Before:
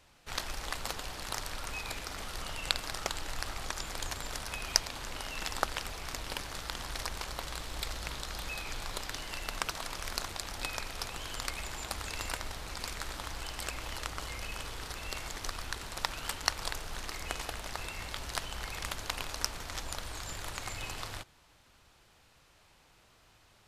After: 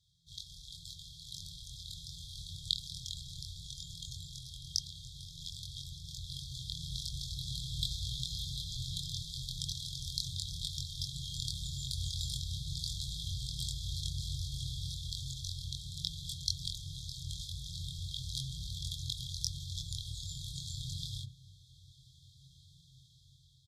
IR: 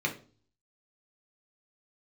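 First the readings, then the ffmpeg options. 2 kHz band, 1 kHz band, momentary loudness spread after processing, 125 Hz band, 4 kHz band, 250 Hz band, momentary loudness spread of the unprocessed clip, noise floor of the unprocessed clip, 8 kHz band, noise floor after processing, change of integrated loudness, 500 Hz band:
below −40 dB, below −40 dB, 11 LU, +6.0 dB, +0.5 dB, can't be measured, 7 LU, −63 dBFS, −4.0 dB, −61 dBFS, −2.0 dB, below −40 dB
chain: -filter_complex "[0:a]asplit=2[link_01][link_02];[link_02]asubboost=boost=11.5:cutoff=140[link_03];[1:a]atrim=start_sample=2205,asetrate=39690,aresample=44100[link_04];[link_03][link_04]afir=irnorm=-1:irlink=0,volume=-23dB[link_05];[link_01][link_05]amix=inputs=2:normalize=0,dynaudnorm=framelen=550:gausssize=5:maxgain=11.5dB,asplit=3[link_06][link_07][link_08];[link_06]bandpass=frequency=300:width_type=q:width=8,volume=0dB[link_09];[link_07]bandpass=frequency=870:width_type=q:width=8,volume=-6dB[link_10];[link_08]bandpass=frequency=2240:width_type=q:width=8,volume=-9dB[link_11];[link_09][link_10][link_11]amix=inputs=3:normalize=0,highshelf=frequency=7700:gain=4,asplit=2[link_12][link_13];[link_13]adelay=23,volume=-2dB[link_14];[link_12][link_14]amix=inputs=2:normalize=0,afftfilt=real='re*(1-between(b*sr/4096,170,3200))':imag='im*(1-between(b*sr/4096,170,3200))':win_size=4096:overlap=0.75,volume=17dB"

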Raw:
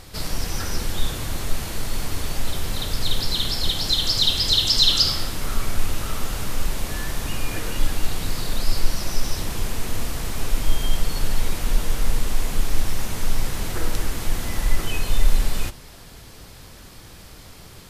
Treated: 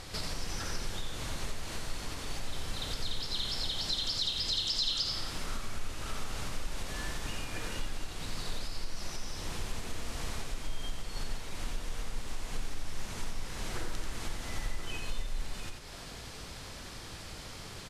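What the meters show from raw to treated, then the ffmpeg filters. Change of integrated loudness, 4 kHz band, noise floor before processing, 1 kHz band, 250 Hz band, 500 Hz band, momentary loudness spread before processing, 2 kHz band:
−12.5 dB, −12.0 dB, −43 dBFS, −9.5 dB, −12.0 dB, −11.0 dB, 21 LU, −9.0 dB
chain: -af "lowpass=8500,lowshelf=frequency=460:gain=-4,acompressor=threshold=-35dB:ratio=3,aecho=1:1:88:0.531"

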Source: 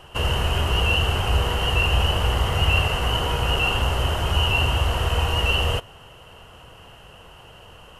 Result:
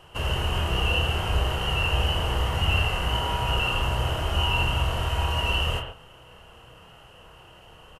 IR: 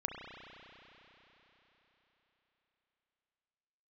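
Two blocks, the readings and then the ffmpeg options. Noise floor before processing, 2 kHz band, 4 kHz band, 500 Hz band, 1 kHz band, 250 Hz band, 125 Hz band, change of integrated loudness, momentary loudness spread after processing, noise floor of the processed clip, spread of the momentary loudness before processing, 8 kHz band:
−46 dBFS, −4.0 dB, −3.5 dB, −4.5 dB, −2.5 dB, −3.0 dB, −3.5 dB, −3.5 dB, 3 LU, −51 dBFS, 3 LU, −5.0 dB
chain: -filter_complex "[0:a]asplit=2[link_01][link_02];[link_02]adelay=26,volume=-8dB[link_03];[link_01][link_03]amix=inputs=2:normalize=0[link_04];[1:a]atrim=start_sample=2205,atrim=end_sample=6174[link_05];[link_04][link_05]afir=irnorm=-1:irlink=0,volume=-4.5dB"

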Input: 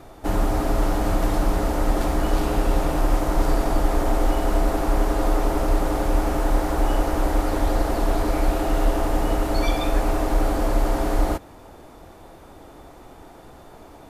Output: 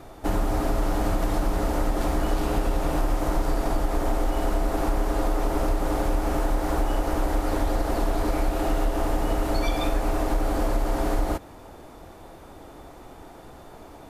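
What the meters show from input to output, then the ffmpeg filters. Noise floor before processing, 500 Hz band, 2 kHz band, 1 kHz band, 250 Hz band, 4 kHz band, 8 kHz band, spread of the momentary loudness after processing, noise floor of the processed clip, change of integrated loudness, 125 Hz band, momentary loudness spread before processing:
−45 dBFS, −3.0 dB, −3.0 dB, −3.0 dB, −3.0 dB, −3.0 dB, −3.0 dB, 19 LU, −45 dBFS, −3.0 dB, −3.0 dB, 1 LU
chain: -af "acompressor=threshold=-19dB:ratio=6"

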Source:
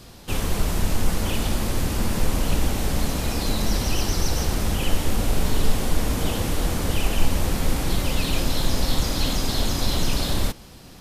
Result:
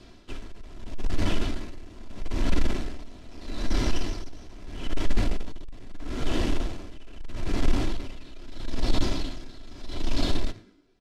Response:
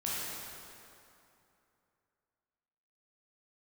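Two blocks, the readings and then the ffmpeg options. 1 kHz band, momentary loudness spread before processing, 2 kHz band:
−9.0 dB, 2 LU, −8.0 dB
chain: -filter_complex "[0:a]asplit=6[link_01][link_02][link_03][link_04][link_05][link_06];[link_02]adelay=108,afreqshift=91,volume=-13.5dB[link_07];[link_03]adelay=216,afreqshift=182,volume=-19dB[link_08];[link_04]adelay=324,afreqshift=273,volume=-24.5dB[link_09];[link_05]adelay=432,afreqshift=364,volume=-30dB[link_10];[link_06]adelay=540,afreqshift=455,volume=-35.6dB[link_11];[link_01][link_07][link_08][link_09][link_10][link_11]amix=inputs=6:normalize=0,acrossover=split=790[link_12][link_13];[link_12]acrusher=samples=19:mix=1:aa=0.000001:lfo=1:lforange=11.4:lforate=0.86[link_14];[link_14][link_13]amix=inputs=2:normalize=0,aecho=1:1:3:0.51,asplit=2[link_15][link_16];[link_16]acrusher=bits=3:mix=0:aa=0.000001,volume=-5.5dB[link_17];[link_15][link_17]amix=inputs=2:normalize=0,lowpass=5100,equalizer=frequency=65:width_type=o:width=2.8:gain=-10,asoftclip=type=tanh:threshold=-14dB,lowshelf=frequency=460:gain=9,aeval=exprs='val(0)*pow(10,-21*(0.5-0.5*cos(2*PI*0.78*n/s))/20)':channel_layout=same,volume=-6.5dB"

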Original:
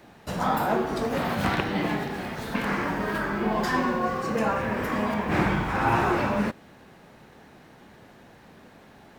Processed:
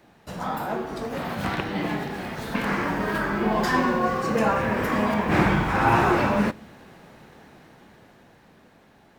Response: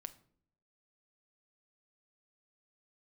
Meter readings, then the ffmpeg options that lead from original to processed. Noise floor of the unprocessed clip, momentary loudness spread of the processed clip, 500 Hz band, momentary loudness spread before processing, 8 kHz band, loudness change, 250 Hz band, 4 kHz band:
−52 dBFS, 11 LU, +2.0 dB, 6 LU, +1.5 dB, +2.0 dB, +2.0 dB, +1.0 dB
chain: -filter_complex "[0:a]dynaudnorm=framelen=290:gausssize=13:maxgain=10.5dB,asplit=2[link_01][link_02];[1:a]atrim=start_sample=2205[link_03];[link_02][link_03]afir=irnorm=-1:irlink=0,volume=-5dB[link_04];[link_01][link_04]amix=inputs=2:normalize=0,volume=-7dB"

